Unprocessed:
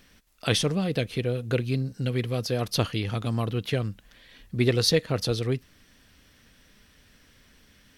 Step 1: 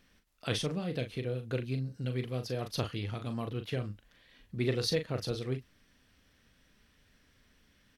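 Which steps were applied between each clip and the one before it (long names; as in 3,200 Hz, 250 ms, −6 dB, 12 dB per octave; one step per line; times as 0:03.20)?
high-shelf EQ 4,800 Hz −4.5 dB
double-tracking delay 39 ms −8 dB
level −8.5 dB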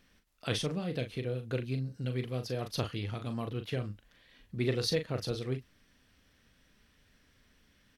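no processing that can be heard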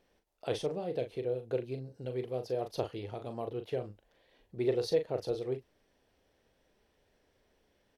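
flat-topped bell 560 Hz +12.5 dB
level −8.5 dB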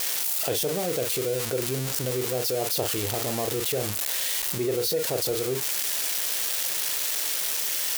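spike at every zero crossing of −25 dBFS
envelope flattener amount 70%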